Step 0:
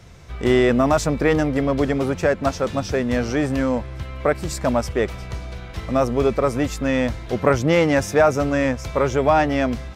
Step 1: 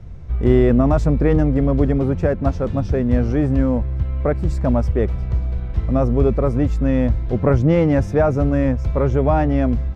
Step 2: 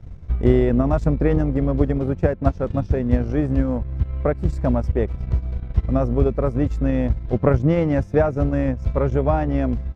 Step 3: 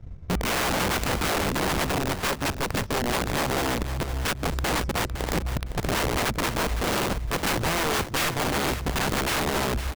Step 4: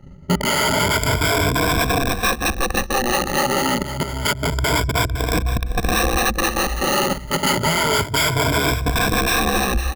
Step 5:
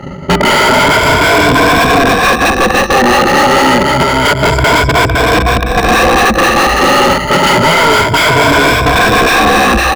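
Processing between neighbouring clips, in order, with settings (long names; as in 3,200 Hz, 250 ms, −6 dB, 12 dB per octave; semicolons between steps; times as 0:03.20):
spectral tilt −4 dB per octave; level −4.5 dB
transient designer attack +6 dB, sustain −10 dB; level −3.5 dB
wrap-around overflow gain 17 dB; repeating echo 510 ms, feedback 23%, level −11 dB; level −3 dB
rippled gain that drifts along the octave scale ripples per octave 1.7, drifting +0.28 Hz, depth 22 dB; level +2 dB
mid-hump overdrive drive 31 dB, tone 2,100 Hz, clips at −5.5 dBFS; level +5.5 dB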